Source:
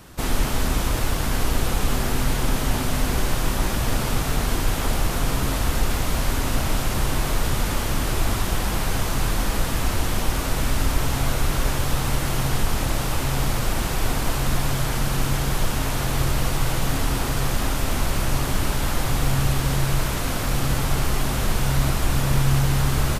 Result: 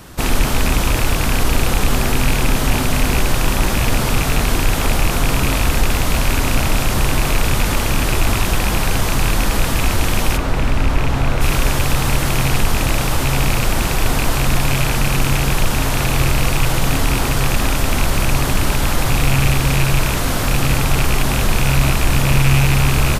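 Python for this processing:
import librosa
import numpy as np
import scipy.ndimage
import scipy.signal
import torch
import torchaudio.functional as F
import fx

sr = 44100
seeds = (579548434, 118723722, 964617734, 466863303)

p1 = fx.rattle_buzz(x, sr, strikes_db=-21.0, level_db=-16.0)
p2 = fx.lowpass(p1, sr, hz=2000.0, slope=6, at=(10.36, 11.4), fade=0.02)
p3 = 10.0 ** (-17.5 / 20.0) * np.tanh(p2 / 10.0 ** (-17.5 / 20.0))
p4 = p2 + (p3 * 10.0 ** (-8.0 / 20.0))
y = p4 * 10.0 ** (4.0 / 20.0)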